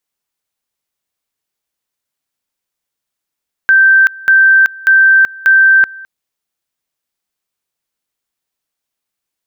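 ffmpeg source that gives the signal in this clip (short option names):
-f lavfi -i "aevalsrc='pow(10,(-4-23.5*gte(mod(t,0.59),0.38))/20)*sin(2*PI*1560*t)':d=2.36:s=44100"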